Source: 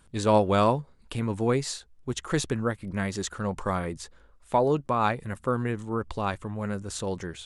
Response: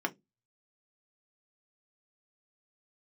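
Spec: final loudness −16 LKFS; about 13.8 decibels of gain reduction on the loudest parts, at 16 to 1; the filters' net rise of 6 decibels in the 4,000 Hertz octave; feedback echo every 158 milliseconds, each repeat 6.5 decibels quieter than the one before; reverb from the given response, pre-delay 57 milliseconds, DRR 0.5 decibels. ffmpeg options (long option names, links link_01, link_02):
-filter_complex "[0:a]equalizer=frequency=4000:width_type=o:gain=7,acompressor=threshold=-30dB:ratio=16,aecho=1:1:158|316|474|632|790|948:0.473|0.222|0.105|0.0491|0.0231|0.0109,asplit=2[link_01][link_02];[1:a]atrim=start_sample=2205,adelay=57[link_03];[link_02][link_03]afir=irnorm=-1:irlink=0,volume=-6.5dB[link_04];[link_01][link_04]amix=inputs=2:normalize=0,volume=17dB"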